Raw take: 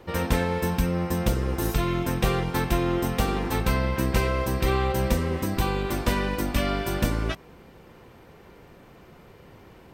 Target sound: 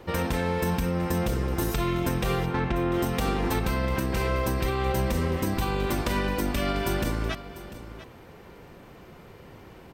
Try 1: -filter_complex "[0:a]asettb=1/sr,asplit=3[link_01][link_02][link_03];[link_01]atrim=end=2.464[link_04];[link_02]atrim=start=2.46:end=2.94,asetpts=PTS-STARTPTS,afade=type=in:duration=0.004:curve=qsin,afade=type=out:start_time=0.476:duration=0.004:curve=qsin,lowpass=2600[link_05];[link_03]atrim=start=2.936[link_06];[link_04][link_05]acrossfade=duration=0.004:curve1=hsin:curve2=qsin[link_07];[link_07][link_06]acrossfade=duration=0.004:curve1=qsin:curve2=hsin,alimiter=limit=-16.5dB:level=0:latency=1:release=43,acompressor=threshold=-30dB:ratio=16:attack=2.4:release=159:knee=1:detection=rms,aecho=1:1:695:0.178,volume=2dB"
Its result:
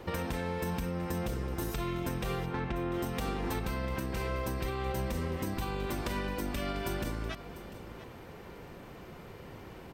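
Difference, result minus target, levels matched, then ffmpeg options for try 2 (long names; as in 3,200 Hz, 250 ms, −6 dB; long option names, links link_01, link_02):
downward compressor: peak gain reduction +8 dB
-filter_complex "[0:a]asettb=1/sr,asplit=3[link_01][link_02][link_03];[link_01]atrim=end=2.464[link_04];[link_02]atrim=start=2.46:end=2.94,asetpts=PTS-STARTPTS,afade=type=in:duration=0.004:curve=qsin,afade=type=out:start_time=0.476:duration=0.004:curve=qsin,lowpass=2600[link_05];[link_03]atrim=start=2.936[link_06];[link_04][link_05]acrossfade=duration=0.004:curve1=hsin:curve2=qsin[link_07];[link_07][link_06]acrossfade=duration=0.004:curve1=qsin:curve2=hsin,alimiter=limit=-16.5dB:level=0:latency=1:release=43,acompressor=threshold=-21.5dB:ratio=16:attack=2.4:release=159:knee=1:detection=rms,aecho=1:1:695:0.178,volume=2dB"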